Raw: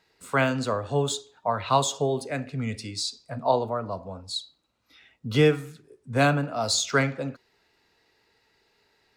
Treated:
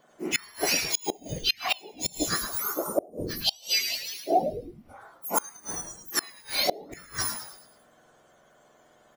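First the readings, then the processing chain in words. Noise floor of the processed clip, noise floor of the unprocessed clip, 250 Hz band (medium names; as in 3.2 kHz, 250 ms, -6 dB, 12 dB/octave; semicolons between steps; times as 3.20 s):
-60 dBFS, -69 dBFS, -7.5 dB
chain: spectrum inverted on a logarithmic axis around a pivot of 1.7 kHz; frequency-shifting echo 107 ms, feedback 45%, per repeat -130 Hz, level -8 dB; inverted gate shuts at -18 dBFS, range -29 dB; trim +7 dB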